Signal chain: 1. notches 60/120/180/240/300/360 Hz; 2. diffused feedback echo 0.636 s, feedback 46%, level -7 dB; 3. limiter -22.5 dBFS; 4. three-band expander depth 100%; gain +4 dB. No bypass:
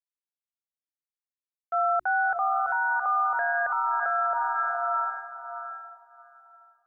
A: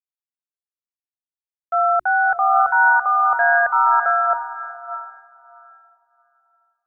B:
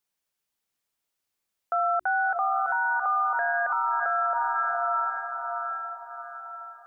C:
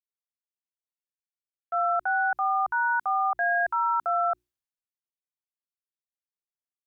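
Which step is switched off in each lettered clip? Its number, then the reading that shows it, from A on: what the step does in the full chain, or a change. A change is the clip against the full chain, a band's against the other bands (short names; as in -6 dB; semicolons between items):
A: 3, mean gain reduction 4.5 dB; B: 4, momentary loudness spread change +1 LU; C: 2, momentary loudness spread change -9 LU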